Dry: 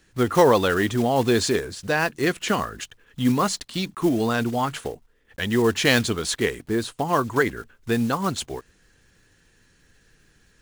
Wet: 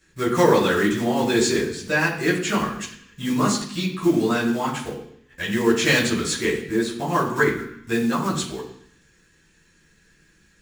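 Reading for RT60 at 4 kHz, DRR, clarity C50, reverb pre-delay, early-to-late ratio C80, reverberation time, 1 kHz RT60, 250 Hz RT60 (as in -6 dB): 0.85 s, -6.5 dB, 6.5 dB, 10 ms, 9.5 dB, 0.65 s, 0.65 s, 0.85 s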